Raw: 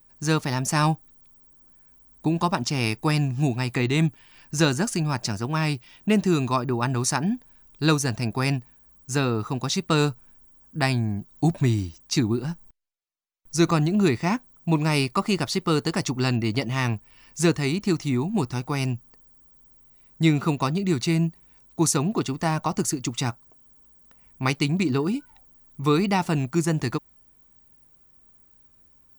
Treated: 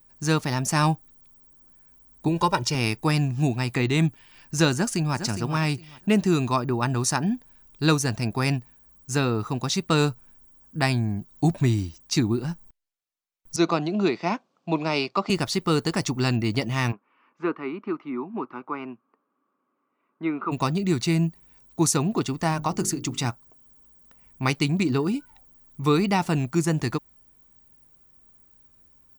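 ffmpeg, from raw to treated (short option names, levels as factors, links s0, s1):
-filter_complex "[0:a]asettb=1/sr,asplit=3[s0][s1][s2];[s0]atrim=end=2.284[s3];[s1]atrim=start=2.28:end=2.75,asetpts=PTS-STARTPTS,afade=t=in:d=0.004:c=qsin,afade=t=out:st=0.466:d=0.004:c=qsin,aecho=1:1:2.1:0.76,atrim=end_sample=20727[s4];[s2]atrim=start=2.746[s5];[s3][s4]acrossfade=d=0.004:c1=hsin:c2=qsin[s6];[s6][s5]acrossfade=d=0.004:c1=qsin:c2=hsin,asplit=2[s7][s8];[s8]afade=t=in:st=4.73:d=0.01,afade=t=out:st=5.16:d=0.01,aecho=0:1:410|820|1230:0.334965|0.0669931|0.0133986[s9];[s7][s9]amix=inputs=2:normalize=0,asettb=1/sr,asplit=3[s10][s11][s12];[s10]atrim=end=6.884[s13];[s11]atrim=start=6.88:end=7.34,asetpts=PTS-STARTPTS,afade=t=in:d=0.004:c=qsin,afade=t=out:st=0.456:d=0.004:c=qsin,bandreject=f=2200:w=12[s14];[s12]atrim=start=7.336[s15];[s13][s14]acrossfade=d=0.004:c1=hsin:c2=qsin[s16];[s16][s15]acrossfade=d=0.004:c1=qsin:c2=hsin,asettb=1/sr,asplit=3[s17][s18][s19];[s17]atrim=end=13.564[s20];[s18]atrim=start=13.56:end=15.3,asetpts=PTS-STARTPTS,afade=t=in:d=0.004:c=qsin,afade=t=out:st=1.736:d=0.004:c=qsin,highpass=f=200:w=0.5412,highpass=f=200:w=1.3066,equalizer=f=250:t=q:w=4:g=-6,equalizer=f=630:t=q:w=4:g=4,equalizer=f=1800:t=q:w=4:g=-6,lowpass=f=5200:w=0.5412,lowpass=f=5200:w=1.3066[s21];[s19]atrim=start=15.296[s22];[s20][s21]acrossfade=d=0.004:c1=hsin:c2=qsin[s23];[s23][s22]acrossfade=d=0.004:c1=qsin:c2=hsin,asplit=3[s24][s25][s26];[s24]afade=t=out:st=16.91:d=0.02[s27];[s25]highpass=f=280:w=0.5412,highpass=f=280:w=1.3066,equalizer=f=330:t=q:w=4:g=-3,equalizer=f=490:t=q:w=4:g=-6,equalizer=f=720:t=q:w=4:g=-9,equalizer=f=1200:t=q:w=4:g=6,equalizer=f=1800:t=q:w=4:g=-9,lowpass=f=2000:w=0.5412,lowpass=f=2000:w=1.3066,afade=t=in:st=16.91:d=0.02,afade=t=out:st=20.51:d=0.02[s28];[s26]afade=t=in:st=20.51:d=0.02[s29];[s27][s28][s29]amix=inputs=3:normalize=0,asettb=1/sr,asplit=3[s30][s31][s32];[s30]atrim=end=22.524[s33];[s31]atrim=start=22.52:end=23.26,asetpts=PTS-STARTPTS,afade=t=in:d=0.004:c=qsin,afade=t=out:st=0.736:d=0.004:c=qsin,bandreject=f=50:t=h:w=6,bandreject=f=100:t=h:w=6,bandreject=f=150:t=h:w=6,bandreject=f=200:t=h:w=6,bandreject=f=250:t=h:w=6,bandreject=f=300:t=h:w=6,bandreject=f=350:t=h:w=6,bandreject=f=400:t=h:w=6,bandreject=f=450:t=h:w=6[s34];[s32]atrim=start=23.256[s35];[s33][s34]acrossfade=d=0.004:c1=hsin:c2=qsin[s36];[s36][s35]acrossfade=d=0.004:c1=qsin:c2=hsin"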